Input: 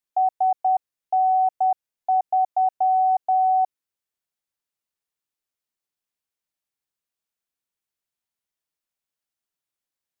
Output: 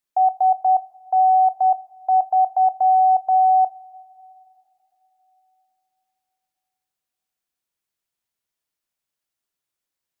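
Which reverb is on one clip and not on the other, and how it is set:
coupled-rooms reverb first 0.38 s, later 3.8 s, from −18 dB, DRR 13.5 dB
level +3 dB

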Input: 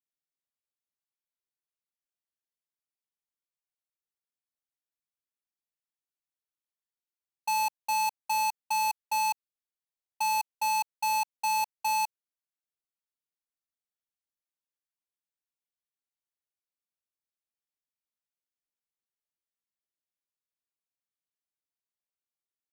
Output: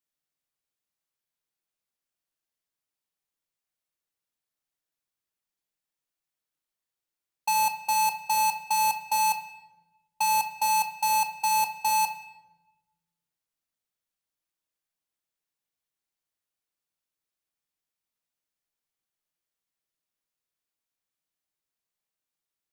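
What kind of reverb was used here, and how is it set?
rectangular room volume 520 cubic metres, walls mixed, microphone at 0.59 metres
level +4.5 dB

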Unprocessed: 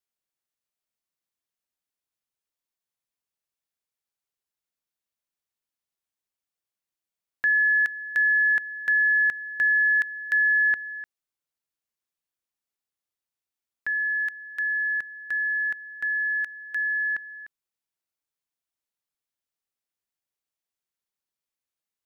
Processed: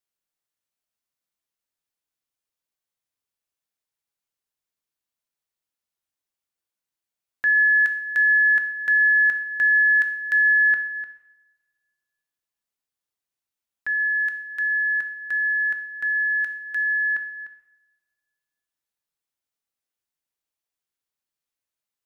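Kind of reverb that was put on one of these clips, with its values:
coupled-rooms reverb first 0.72 s, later 1.9 s, from −21 dB, DRR 6 dB

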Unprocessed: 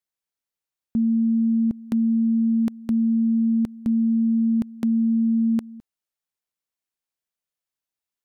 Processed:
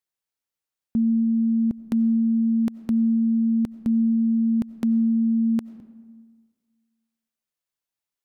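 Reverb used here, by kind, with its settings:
comb and all-pass reverb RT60 1.6 s, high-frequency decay 0.5×, pre-delay 50 ms, DRR 16.5 dB

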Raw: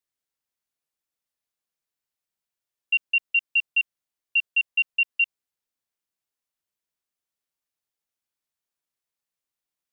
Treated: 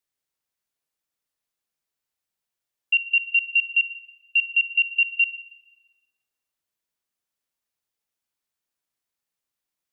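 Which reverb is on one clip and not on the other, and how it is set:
spring reverb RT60 1.1 s, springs 33/45 ms, chirp 50 ms, DRR 11.5 dB
level +2 dB

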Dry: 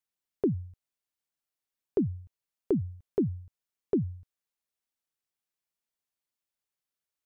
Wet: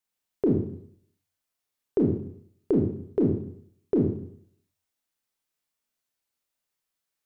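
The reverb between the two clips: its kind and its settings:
four-comb reverb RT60 0.63 s, combs from 25 ms, DRR −1.5 dB
level +2 dB

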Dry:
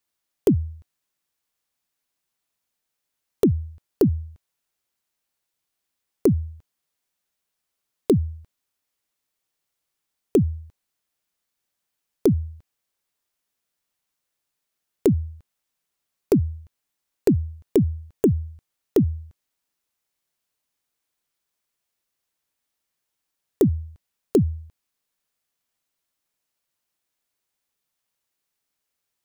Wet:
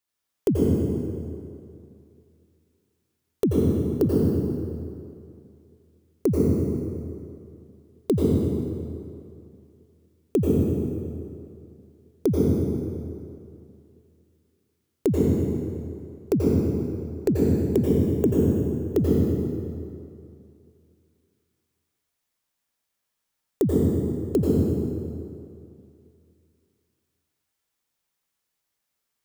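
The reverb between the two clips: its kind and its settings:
dense smooth reverb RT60 2.5 s, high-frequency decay 0.7×, pre-delay 75 ms, DRR −4.5 dB
level −4.5 dB

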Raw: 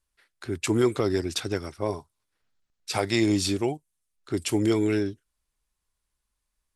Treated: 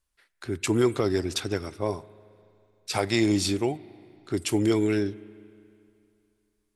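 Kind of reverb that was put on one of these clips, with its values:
spring reverb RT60 2.6 s, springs 33/39 ms, chirp 60 ms, DRR 19 dB

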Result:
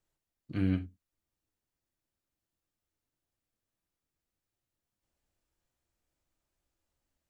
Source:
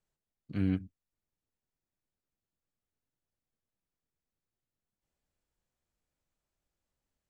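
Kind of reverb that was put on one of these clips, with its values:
reverb whose tail is shaped and stops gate 110 ms falling, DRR 6.5 dB
level +1.5 dB

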